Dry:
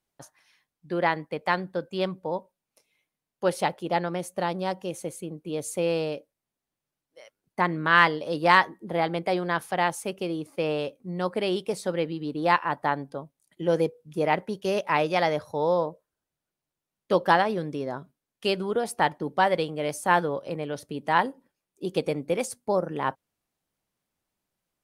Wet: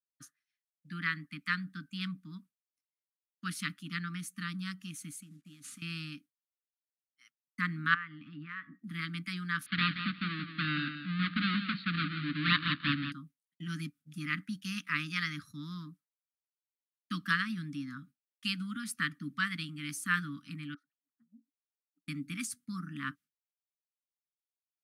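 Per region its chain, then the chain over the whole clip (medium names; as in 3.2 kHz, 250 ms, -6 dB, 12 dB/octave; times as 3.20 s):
5.22–5.82 s: CVSD coder 64 kbps + compression 4:1, threshold -41 dBFS
7.94–8.84 s: low-pass 2.5 kHz 24 dB/octave + compression 8:1, threshold -30 dBFS
9.66–13.12 s: square wave that keeps the level + steep low-pass 4.4 kHz 96 dB/octave + feedback delay 176 ms, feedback 17%, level -9 dB
20.74–22.08 s: auto-wah 230–2500 Hz, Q 19, down, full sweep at -24.5 dBFS + compression 5:1, threshold -50 dBFS + phase dispersion lows, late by 134 ms, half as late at 390 Hz
whole clip: Chebyshev band-stop 290–1200 Hz, order 5; expander -49 dBFS; high-pass 130 Hz; trim -3 dB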